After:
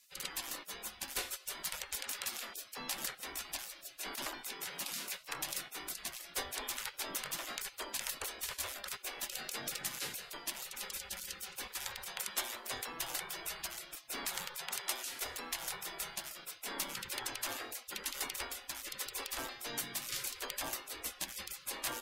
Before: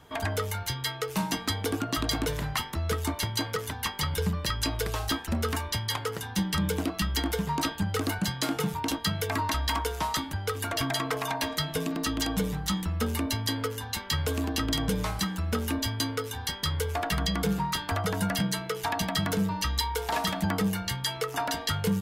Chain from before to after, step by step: spectral gate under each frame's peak -25 dB weak; trim +2.5 dB

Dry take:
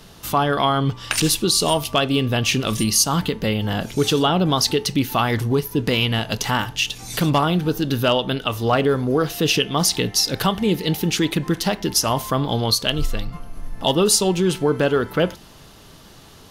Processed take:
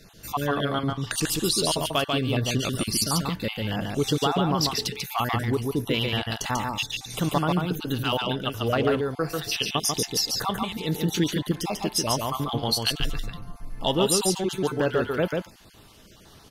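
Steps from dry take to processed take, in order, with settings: random holes in the spectrogram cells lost 32%; delay 142 ms -3.5 dB; trim -5.5 dB

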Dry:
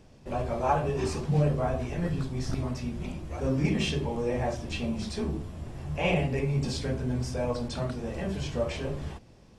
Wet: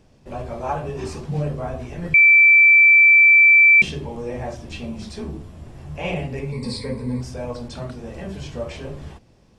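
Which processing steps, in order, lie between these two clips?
2.14–3.82 s: bleep 2.33 kHz -8 dBFS; 6.52–7.21 s: rippled EQ curve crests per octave 0.94, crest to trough 17 dB

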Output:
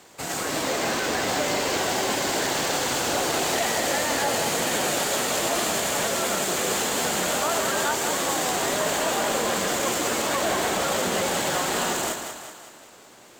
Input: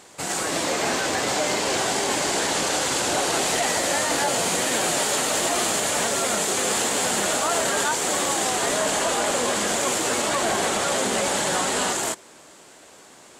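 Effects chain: frequency shift -15 Hz; two-band feedback delay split 500 Hz, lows 133 ms, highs 189 ms, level -7 dB; decimation joined by straight lines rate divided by 2×; trim -2 dB

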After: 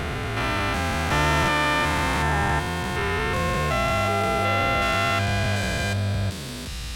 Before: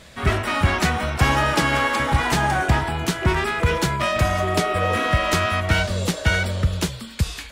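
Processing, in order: spectrogram pixelated in time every 400 ms; wide varispeed 1.08×

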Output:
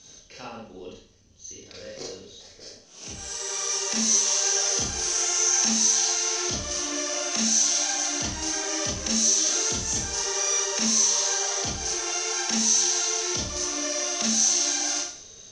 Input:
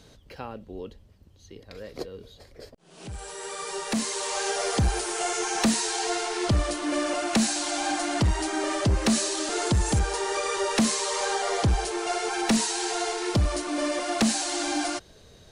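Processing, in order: peaking EQ 3.1 kHz +5 dB 1.6 oct; compression, threshold -27 dBFS, peak gain reduction 8.5 dB; resonant low-pass 6.1 kHz, resonance Q 12; bass shelf 62 Hz -6 dB; Schroeder reverb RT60 0.52 s, combs from 28 ms, DRR -5 dB; trim -8 dB

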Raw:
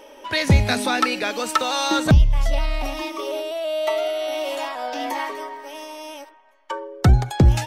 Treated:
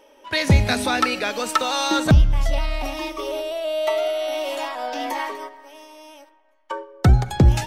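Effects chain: gate -31 dBFS, range -8 dB; algorithmic reverb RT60 1.5 s, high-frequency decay 0.45×, pre-delay 20 ms, DRR 19.5 dB

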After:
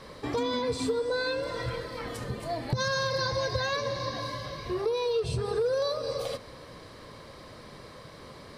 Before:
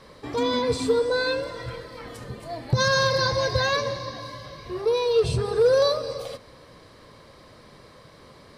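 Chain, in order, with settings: compression 4:1, threshold -30 dBFS, peak gain reduction 12.5 dB; trim +2.5 dB

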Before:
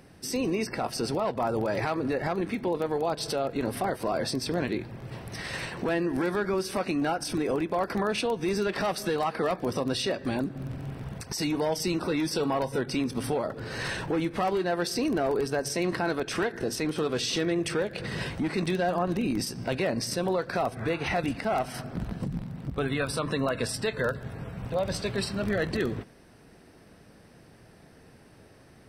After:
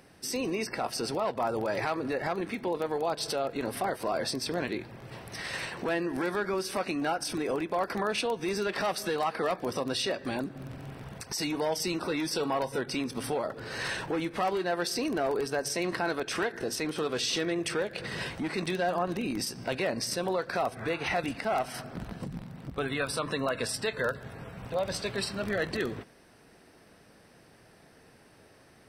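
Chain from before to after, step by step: bass shelf 310 Hz -8 dB

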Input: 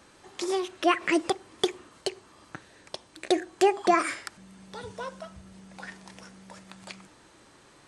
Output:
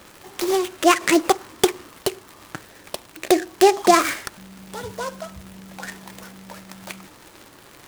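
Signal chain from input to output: crackle 310 per s -40 dBFS; 1.17–1.72 s: dynamic bell 1.2 kHz, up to +7 dB, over -44 dBFS, Q 1.1; delay time shaken by noise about 5.1 kHz, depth 0.039 ms; trim +7.5 dB

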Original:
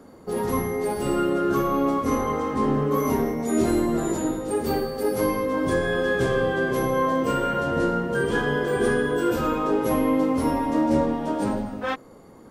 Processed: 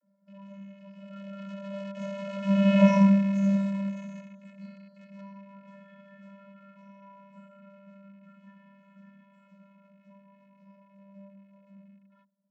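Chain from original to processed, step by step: rattle on loud lows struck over -33 dBFS, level -17 dBFS; Doppler pass-by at 2.81 s, 16 m/s, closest 1.9 m; in parallel at -4.5 dB: word length cut 6-bit, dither none; on the sum: vocoder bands 32, square 197 Hz; trim +4 dB

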